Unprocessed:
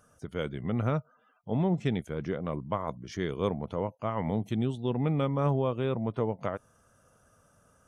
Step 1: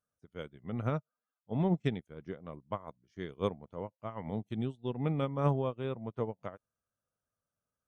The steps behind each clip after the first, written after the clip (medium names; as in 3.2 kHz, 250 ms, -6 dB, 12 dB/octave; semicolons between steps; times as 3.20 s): upward expansion 2.5:1, over -43 dBFS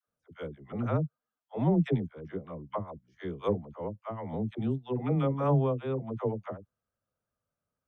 treble shelf 2.5 kHz -10.5 dB; phase dispersion lows, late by 81 ms, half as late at 470 Hz; trim +4.5 dB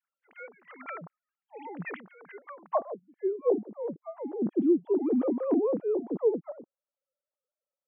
formants replaced by sine waves; wow and flutter 23 cents; band-pass sweep 2.2 kHz -> 320 Hz, 2.41–3.05 s; trim +9 dB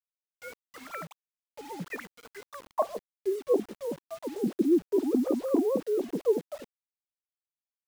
phase dispersion highs, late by 58 ms, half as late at 440 Hz; bit crusher 8-bit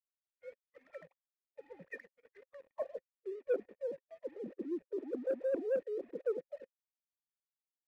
coarse spectral quantiser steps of 15 dB; cascade formant filter e; waveshaping leveller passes 1; trim -3.5 dB